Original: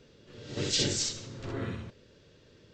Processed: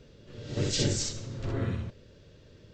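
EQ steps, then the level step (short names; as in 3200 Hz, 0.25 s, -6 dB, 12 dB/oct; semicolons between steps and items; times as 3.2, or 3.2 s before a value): low shelf 140 Hz +11 dB; bell 600 Hz +3.5 dB 0.42 oct; dynamic EQ 3500 Hz, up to -4 dB, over -46 dBFS, Q 1; 0.0 dB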